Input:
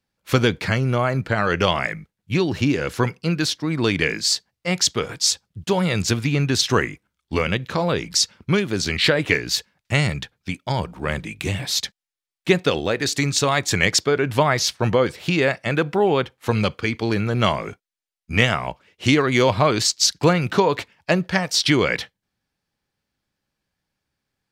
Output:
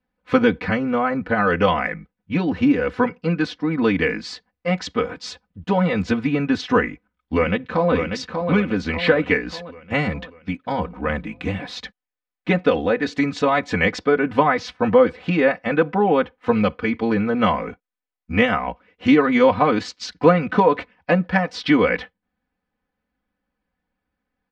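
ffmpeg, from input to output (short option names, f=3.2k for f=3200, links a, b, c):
-filter_complex "[0:a]asplit=2[a][b];[b]afade=t=in:st=6.82:d=0.01,afade=t=out:st=7.93:d=0.01,aecho=0:1:590|1180|1770|2360|2950|3540:0.530884|0.265442|0.132721|0.0663606|0.0331803|0.0165901[c];[a][c]amix=inputs=2:normalize=0,lowpass=1.9k,aecho=1:1:4:0.95"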